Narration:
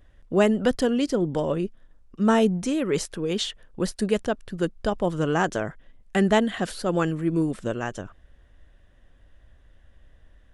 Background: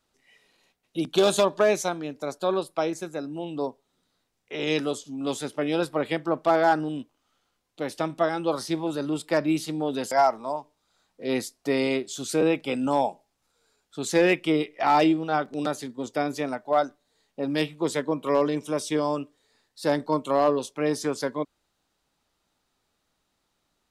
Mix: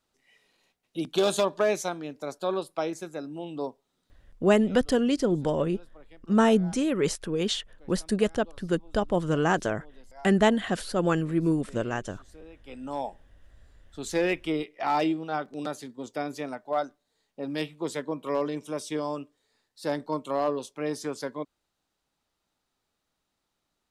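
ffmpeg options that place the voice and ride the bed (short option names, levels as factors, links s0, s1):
-filter_complex "[0:a]adelay=4100,volume=0.891[s0];[1:a]volume=7.94,afade=t=out:st=4.32:d=0.21:silence=0.0668344,afade=t=in:st=12.55:d=0.71:silence=0.0841395[s1];[s0][s1]amix=inputs=2:normalize=0"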